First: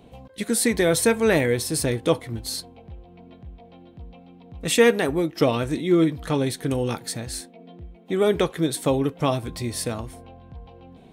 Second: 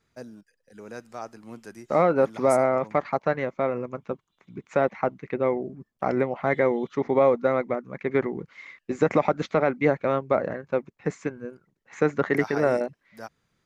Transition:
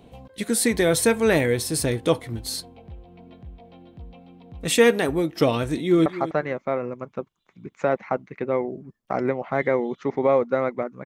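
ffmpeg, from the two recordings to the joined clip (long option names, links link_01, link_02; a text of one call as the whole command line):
ffmpeg -i cue0.wav -i cue1.wav -filter_complex "[0:a]apad=whole_dur=11.05,atrim=end=11.05,atrim=end=6.062[link_01];[1:a]atrim=start=2.978:end=7.97[link_02];[link_01][link_02]acrossfade=duration=0.004:curve1=hsin:curve2=hsin,asplit=2[link_03][link_04];[link_04]afade=type=in:start_time=5.69:duration=0.01,afade=type=out:start_time=6.06:duration=0.01,aecho=0:1:250|500:0.188365|0.0282547[link_05];[link_03][link_05]amix=inputs=2:normalize=0" out.wav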